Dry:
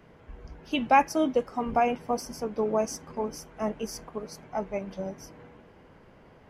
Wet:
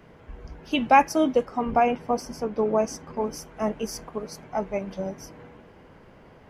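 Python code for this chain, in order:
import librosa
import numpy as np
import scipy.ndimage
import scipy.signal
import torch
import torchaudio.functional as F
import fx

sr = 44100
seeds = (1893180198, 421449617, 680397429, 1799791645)

y = fx.high_shelf(x, sr, hz=6200.0, db=-8.5, at=(1.45, 3.21))
y = F.gain(torch.from_numpy(y), 3.5).numpy()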